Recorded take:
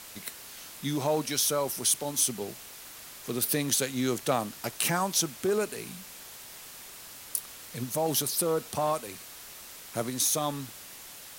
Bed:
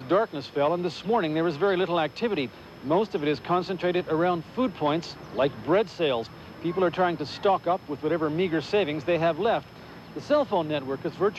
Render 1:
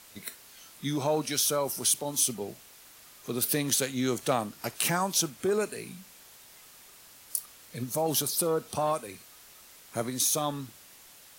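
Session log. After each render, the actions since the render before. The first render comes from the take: noise print and reduce 7 dB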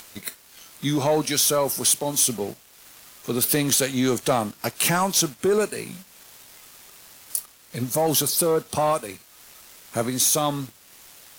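waveshaping leveller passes 2; upward compressor, threshold -37 dBFS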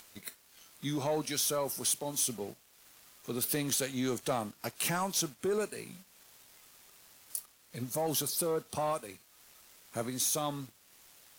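trim -11 dB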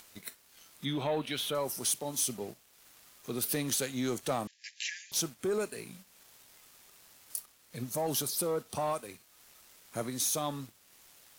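0.85–1.55 s: resonant high shelf 4.3 kHz -8.5 dB, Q 3; 4.47–5.12 s: brick-wall FIR band-pass 1.6–7.5 kHz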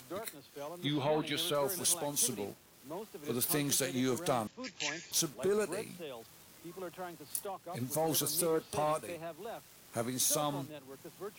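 add bed -20 dB

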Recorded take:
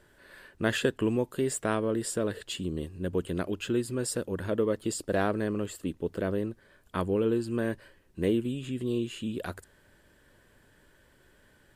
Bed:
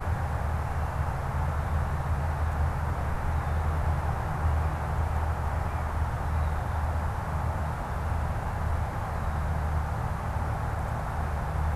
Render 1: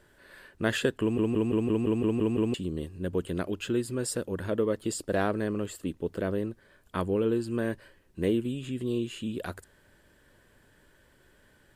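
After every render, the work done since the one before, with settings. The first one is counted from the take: 1.01 s: stutter in place 0.17 s, 9 plays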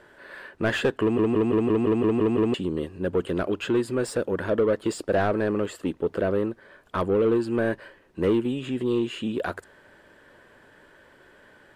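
overdrive pedal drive 21 dB, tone 1.1 kHz, clips at -11 dBFS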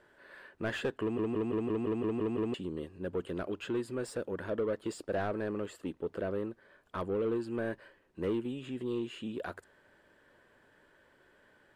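trim -10.5 dB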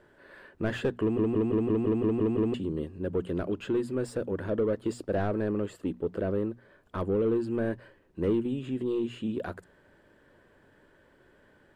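bass shelf 440 Hz +10 dB; hum notches 60/120/180/240 Hz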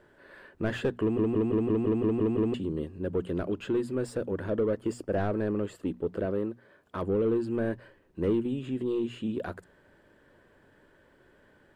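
4.77–5.18 s: peaking EQ 3.9 kHz -13 dB 0.23 oct; 6.25–7.03 s: high-pass 140 Hz 6 dB/octave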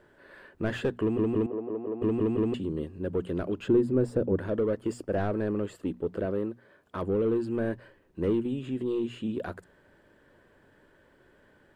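1.46–2.02 s: band-pass filter 620 Hz, Q 1.6; 3.68–4.39 s: tilt shelf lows +7.5 dB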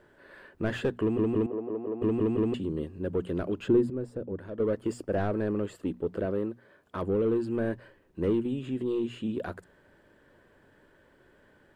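3.90–4.60 s: gain -9 dB

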